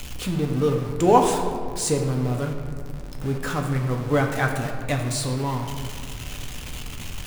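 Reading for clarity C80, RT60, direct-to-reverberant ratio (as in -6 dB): 6.5 dB, 2.1 s, 2.0 dB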